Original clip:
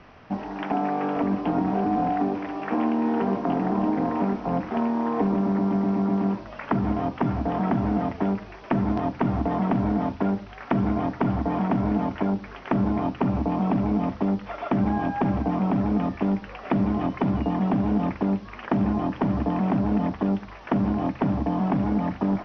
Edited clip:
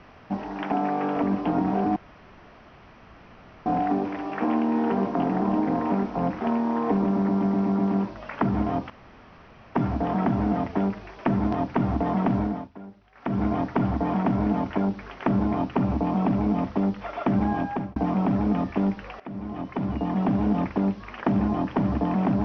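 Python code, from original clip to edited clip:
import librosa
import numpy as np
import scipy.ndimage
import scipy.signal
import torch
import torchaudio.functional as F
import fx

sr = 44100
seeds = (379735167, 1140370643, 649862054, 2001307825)

y = fx.edit(x, sr, fx.insert_room_tone(at_s=1.96, length_s=1.7),
    fx.insert_room_tone(at_s=7.2, length_s=0.85),
    fx.fade_down_up(start_s=9.82, length_s=1.08, db=-17.5, fade_s=0.32),
    fx.fade_out_span(start_s=14.92, length_s=0.49, curve='qsin'),
    fx.fade_in_from(start_s=16.65, length_s=1.13, floor_db=-18.0), tone=tone)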